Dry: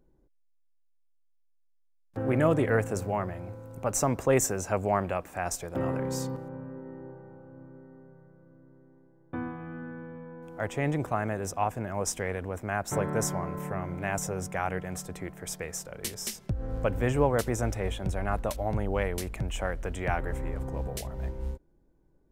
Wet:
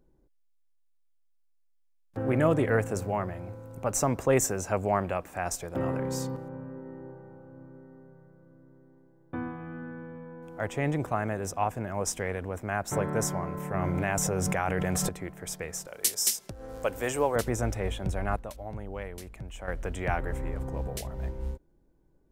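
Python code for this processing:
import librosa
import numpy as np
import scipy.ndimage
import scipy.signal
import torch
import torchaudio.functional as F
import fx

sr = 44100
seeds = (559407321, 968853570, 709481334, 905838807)

y = fx.env_flatten(x, sr, amount_pct=100, at=(13.74, 15.09))
y = fx.bass_treble(y, sr, bass_db=-14, treble_db=11, at=(15.87, 17.36))
y = fx.edit(y, sr, fx.clip_gain(start_s=18.36, length_s=1.32, db=-9.0), tone=tone)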